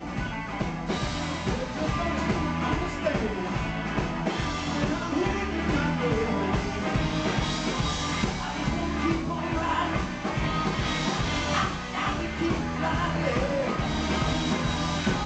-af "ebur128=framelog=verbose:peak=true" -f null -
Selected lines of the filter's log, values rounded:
Integrated loudness:
  I:         -27.7 LUFS
  Threshold: -37.7 LUFS
Loudness range:
  LRA:         1.4 LU
  Threshold: -47.6 LUFS
  LRA low:   -28.5 LUFS
  LRA high:  -27.0 LUFS
True peak:
  Peak:      -11.7 dBFS